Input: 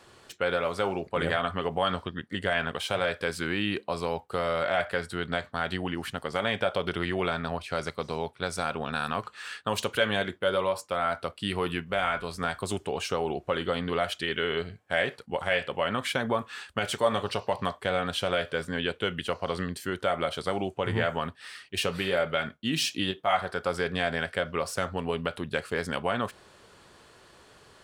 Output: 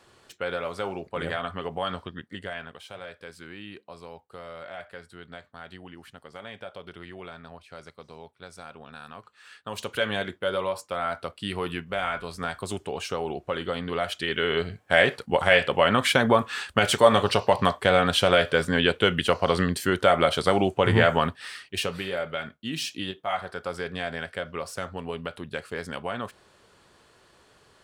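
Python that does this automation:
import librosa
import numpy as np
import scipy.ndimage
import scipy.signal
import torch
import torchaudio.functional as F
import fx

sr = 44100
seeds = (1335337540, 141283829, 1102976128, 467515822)

y = fx.gain(x, sr, db=fx.line((2.2, -3.0), (2.8, -13.0), (9.35, -13.0), (10.01, -1.0), (13.89, -1.0), (15.04, 8.0), (21.24, 8.0), (22.1, -3.5)))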